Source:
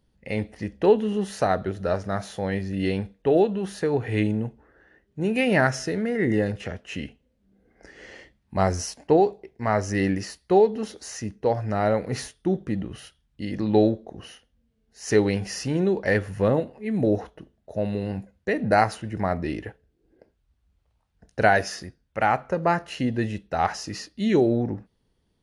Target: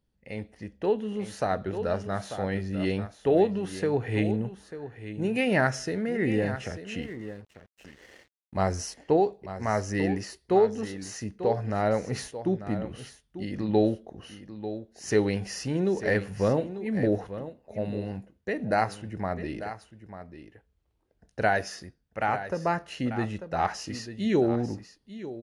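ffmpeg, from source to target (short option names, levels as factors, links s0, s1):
-filter_complex "[0:a]aecho=1:1:893:0.251,dynaudnorm=f=130:g=21:m=2.82,asettb=1/sr,asplit=3[s0][s1][s2];[s0]atrim=end=7.024[s3];[s1]atrim=start=7.02:end=8.57,asetpts=PTS-STARTPTS,afade=t=in:d=0.004:c=qsin,afade=t=out:st=1.546:d=0.004:c=qsin,aeval=exprs='sgn(val(0))*max(abs(val(0))-0.00562,0)':c=same[s4];[s2]atrim=start=8.566[s5];[s3][s4]acrossfade=d=0.004:c1=hsin:c2=qsin[s6];[s6][s5]acrossfade=d=0.004:c1=qsin:c2=hsin,volume=0.355"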